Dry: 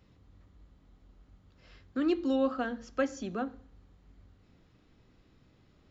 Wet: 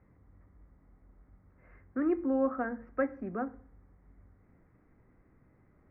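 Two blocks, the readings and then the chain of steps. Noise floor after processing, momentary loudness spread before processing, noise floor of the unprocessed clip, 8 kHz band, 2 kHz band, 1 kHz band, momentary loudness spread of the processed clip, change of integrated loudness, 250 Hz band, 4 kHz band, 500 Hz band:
-66 dBFS, 10 LU, -65 dBFS, no reading, -1.0 dB, 0.0 dB, 9 LU, -0.5 dB, -1.0 dB, under -30 dB, -0.5 dB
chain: elliptic low-pass 2.1 kHz, stop band 40 dB

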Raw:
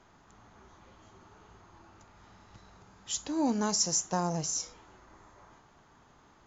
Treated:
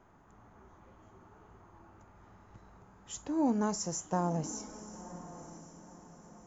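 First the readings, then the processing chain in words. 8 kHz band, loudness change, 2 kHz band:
no reading, -4.5 dB, -4.0 dB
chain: peaking EQ 4.3 kHz -15 dB 1.7 oct; echo that smears into a reverb 1003 ms, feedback 40%, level -14.5 dB

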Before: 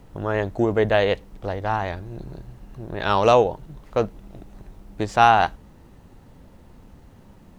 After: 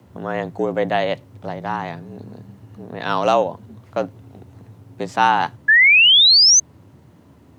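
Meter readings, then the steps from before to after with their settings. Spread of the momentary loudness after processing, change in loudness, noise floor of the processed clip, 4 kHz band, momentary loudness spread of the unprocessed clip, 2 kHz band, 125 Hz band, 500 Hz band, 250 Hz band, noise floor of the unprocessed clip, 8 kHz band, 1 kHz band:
22 LU, +8.5 dB, -50 dBFS, +21.0 dB, 20 LU, +13.0 dB, -3.5 dB, -1.5 dB, -0.5 dB, -50 dBFS, +27.0 dB, 0.0 dB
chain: painted sound rise, 5.68–6.60 s, 1.6–6.3 kHz -10 dBFS; frequency shift +74 Hz; trim -1 dB

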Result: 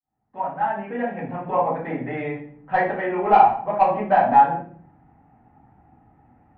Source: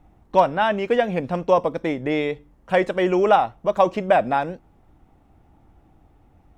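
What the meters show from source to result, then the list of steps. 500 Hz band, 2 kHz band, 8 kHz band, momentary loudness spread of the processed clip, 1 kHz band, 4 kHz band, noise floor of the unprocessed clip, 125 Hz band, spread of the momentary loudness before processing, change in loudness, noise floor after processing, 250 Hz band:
-5.0 dB, -2.0 dB, no reading, 15 LU, +4.0 dB, under -10 dB, -57 dBFS, -3.0 dB, 8 LU, 0.0 dB, -64 dBFS, -4.0 dB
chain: fade-in on the opening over 1.81 s; in parallel at -2 dB: compression, threshold -31 dBFS, peak gain reduction 18.5 dB; on the sum: cabinet simulation 100–2300 Hz, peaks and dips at 150 Hz +5 dB, 260 Hz +4 dB, 400 Hz -4 dB, 570 Hz -3 dB, 820 Hz +9 dB, 1.7 kHz +7 dB; saturation -3 dBFS, distortion -18 dB; simulated room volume 72 m³, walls mixed, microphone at 2.1 m; dynamic bell 880 Hz, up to +5 dB, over -15 dBFS, Q 1.4; trim -15.5 dB

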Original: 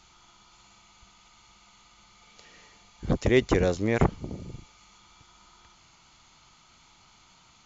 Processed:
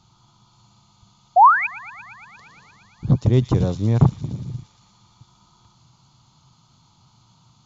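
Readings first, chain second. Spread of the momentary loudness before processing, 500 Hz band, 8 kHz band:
19 LU, -1.0 dB, no reading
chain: peaking EQ 120 Hz +13.5 dB 1.4 oct; painted sound rise, 1.36–1.67 s, 670–2600 Hz -9 dBFS; ten-band graphic EQ 125 Hz +8 dB, 250 Hz +5 dB, 1 kHz +10 dB, 2 kHz -11 dB, 4 kHz +7 dB; on a send: feedback echo behind a high-pass 116 ms, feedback 78%, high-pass 3.6 kHz, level -5.5 dB; on the sum: trim -7 dB

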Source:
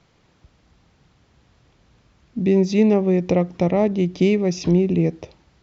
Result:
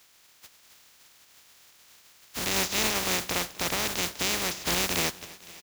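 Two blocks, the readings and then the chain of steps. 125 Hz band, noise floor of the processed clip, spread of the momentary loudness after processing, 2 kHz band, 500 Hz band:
-18.5 dB, -59 dBFS, 7 LU, +5.5 dB, -16.0 dB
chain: spectral contrast reduction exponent 0.17; peak limiter -6 dBFS, peak gain reduction 6.5 dB; feedback delay 256 ms, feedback 55%, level -20.5 dB; tape noise reduction on one side only encoder only; trim -8 dB

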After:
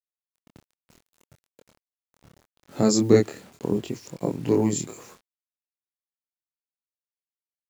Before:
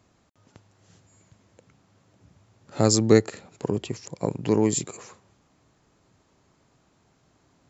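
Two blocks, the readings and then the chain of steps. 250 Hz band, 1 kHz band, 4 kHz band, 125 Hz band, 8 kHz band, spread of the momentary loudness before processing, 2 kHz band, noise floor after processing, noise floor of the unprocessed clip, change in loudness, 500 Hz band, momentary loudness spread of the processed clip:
+1.0 dB, -2.0 dB, -3.0 dB, -1.5 dB, no reading, 19 LU, -2.5 dB, under -85 dBFS, -65 dBFS, 0.0 dB, +0.5 dB, 17 LU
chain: peaking EQ 260 Hz +6 dB 1.5 oct; word length cut 8-bit, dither none; chorus 0.73 Hz, depth 4.4 ms

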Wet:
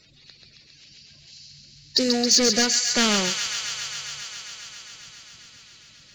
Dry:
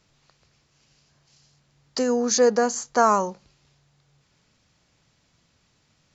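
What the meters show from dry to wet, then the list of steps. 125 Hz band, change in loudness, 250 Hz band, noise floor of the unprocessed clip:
no reading, +1.0 dB, +2.0 dB, -67 dBFS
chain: coarse spectral quantiser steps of 30 dB; in parallel at -2 dB: compression, threshold -36 dBFS, peak gain reduction 20.5 dB; on the sum: overload inside the chain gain 18 dB; graphic EQ 125/1000/2000/4000 Hz +6/-11/+6/+12 dB; feedback echo behind a high-pass 135 ms, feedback 85%, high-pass 1.7 kHz, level -5 dB

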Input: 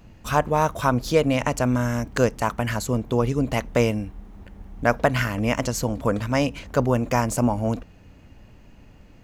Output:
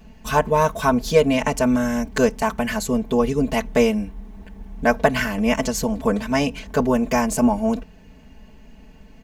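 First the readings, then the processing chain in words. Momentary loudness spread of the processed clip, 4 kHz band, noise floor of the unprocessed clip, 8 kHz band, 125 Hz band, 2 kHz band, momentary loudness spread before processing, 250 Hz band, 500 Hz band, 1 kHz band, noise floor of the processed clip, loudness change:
5 LU, +3.0 dB, -49 dBFS, +3.0 dB, -4.5 dB, +2.5 dB, 5 LU, +4.5 dB, +3.5 dB, +2.0 dB, -47 dBFS, +2.5 dB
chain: band-stop 1.3 kHz, Q 12; comb 4.6 ms, depth 95%

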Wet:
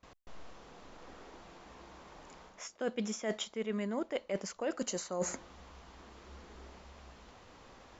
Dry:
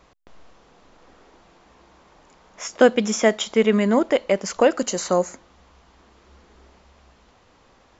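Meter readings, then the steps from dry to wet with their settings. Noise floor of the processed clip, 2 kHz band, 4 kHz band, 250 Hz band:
-60 dBFS, -17.5 dB, -13.5 dB, -16.0 dB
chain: gate with hold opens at -47 dBFS; reverse; compression 20:1, threshold -32 dBFS, peak gain reduction 24 dB; reverse

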